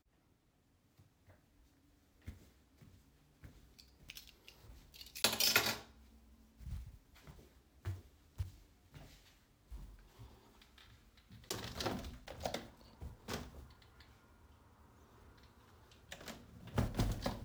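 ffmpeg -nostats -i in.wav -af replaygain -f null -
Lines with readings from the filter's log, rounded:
track_gain = +24.0 dB
track_peak = 0.133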